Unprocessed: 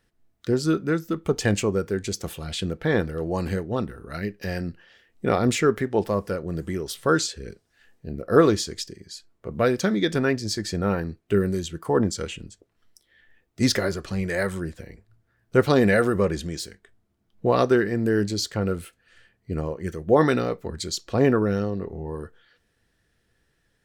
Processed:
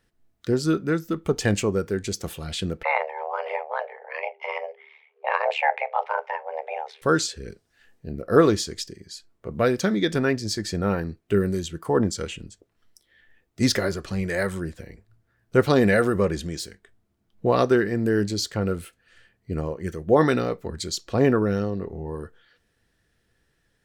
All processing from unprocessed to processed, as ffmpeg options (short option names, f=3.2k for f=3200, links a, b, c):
-filter_complex "[0:a]asettb=1/sr,asplit=3[a][b][c];[a]atrim=end=2.834[d];[b]atrim=start=2.83:end=7.02,asetpts=PTS-STARTPTS,afade=t=in:d=0.004:c=qsin,afade=t=out:st=4.186:d=0.004:c=qsin,lowpass=f=2k:t=q:w=2.4,tremolo=f=75:d=0.788,afreqshift=400[e];[c]atrim=start=7.016[f];[d][e]acrossfade=d=0.004:c1=hsin:c2=qsin[g];[g][f]acrossfade=d=0.004:c1=qsin:c2=hsin"